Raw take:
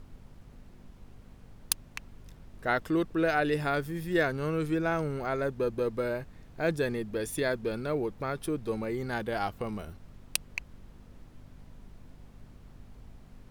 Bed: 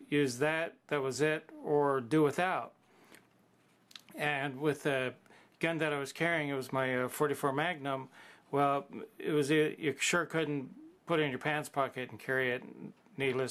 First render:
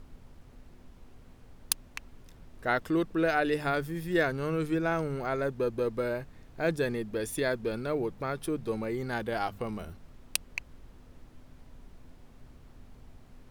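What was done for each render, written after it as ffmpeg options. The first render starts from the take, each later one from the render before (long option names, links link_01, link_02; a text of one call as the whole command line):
ffmpeg -i in.wav -af "bandreject=frequency=50:width_type=h:width=4,bandreject=frequency=100:width_type=h:width=4,bandreject=frequency=150:width_type=h:width=4,bandreject=frequency=200:width_type=h:width=4" out.wav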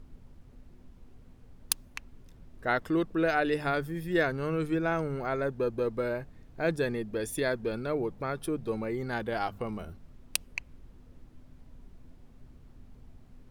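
ffmpeg -i in.wav -af "afftdn=noise_reduction=6:noise_floor=-54" out.wav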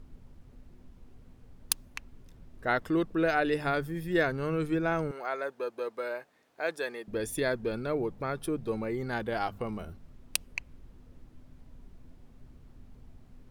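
ffmpeg -i in.wav -filter_complex "[0:a]asettb=1/sr,asplit=3[link_01][link_02][link_03];[link_01]atrim=end=5.114[link_04];[link_02]atrim=start=5.11:end=7.08,asetpts=PTS-STARTPTS,afade=type=in:duration=0.004:curve=qsin,afade=type=out:start_time=1.966:duration=0.004:curve=qsin,highpass=570[link_05];[link_03]atrim=start=7.076[link_06];[link_04][link_05]acrossfade=duration=0.004:curve1=hsin:curve2=qsin[link_07];[link_07][link_06]acrossfade=duration=0.004:curve1=qsin:curve2=hsin" out.wav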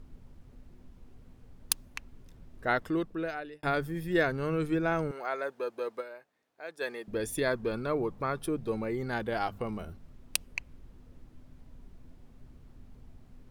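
ffmpeg -i in.wav -filter_complex "[0:a]asettb=1/sr,asplit=3[link_01][link_02][link_03];[link_01]atrim=end=7.474[link_04];[link_02]atrim=start=7.47:end=8.38,asetpts=PTS-STARTPTS,afade=type=in:duration=0.004:curve=qsin,afade=type=out:start_time=0.906:duration=0.004:curve=qsin,equalizer=frequency=1100:width_type=o:width=0.32:gain=7.5[link_05];[link_03]atrim=start=8.376[link_06];[link_04][link_05]acrossfade=duration=0.004:curve1=hsin:curve2=qsin[link_07];[link_07][link_06]acrossfade=duration=0.004:curve1=qsin:curve2=hsin,asplit=4[link_08][link_09][link_10][link_11];[link_08]atrim=end=3.63,asetpts=PTS-STARTPTS,afade=type=out:start_time=2.72:duration=0.91[link_12];[link_09]atrim=start=3.63:end=6.2,asetpts=PTS-STARTPTS,afade=type=in:duration=0.004:curve=hsin,afade=type=out:start_time=2.37:duration=0.2:curve=exp:silence=0.298538[link_13];[link_10]atrim=start=6.2:end=6.62,asetpts=PTS-STARTPTS,volume=-10.5dB[link_14];[link_11]atrim=start=6.62,asetpts=PTS-STARTPTS,afade=type=in:duration=0.2:curve=exp:silence=0.298538[link_15];[link_12][link_13][link_14][link_15]concat=n=4:v=0:a=1" out.wav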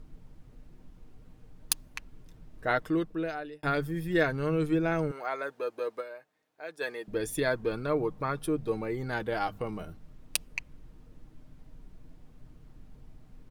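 ffmpeg -i in.wav -af "aecho=1:1:6.5:0.38" out.wav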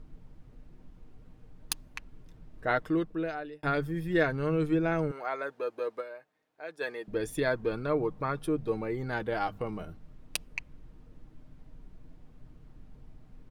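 ffmpeg -i in.wav -af "highshelf=frequency=5200:gain=-7.5" out.wav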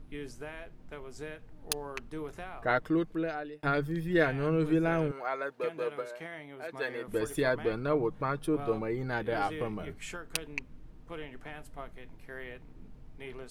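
ffmpeg -i in.wav -i bed.wav -filter_complex "[1:a]volume=-12dB[link_01];[0:a][link_01]amix=inputs=2:normalize=0" out.wav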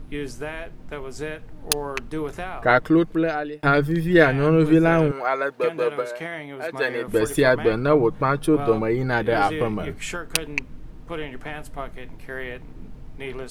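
ffmpeg -i in.wav -af "volume=11dB" out.wav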